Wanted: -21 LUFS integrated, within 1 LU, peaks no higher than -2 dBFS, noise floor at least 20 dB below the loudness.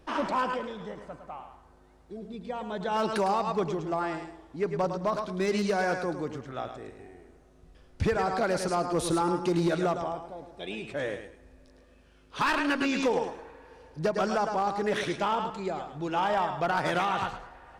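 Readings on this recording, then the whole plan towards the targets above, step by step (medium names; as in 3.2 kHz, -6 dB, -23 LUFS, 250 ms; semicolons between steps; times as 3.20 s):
clipped samples 0.8%; clipping level -20.0 dBFS; loudness -29.5 LUFS; peak level -20.0 dBFS; loudness target -21.0 LUFS
-> clip repair -20 dBFS; trim +8.5 dB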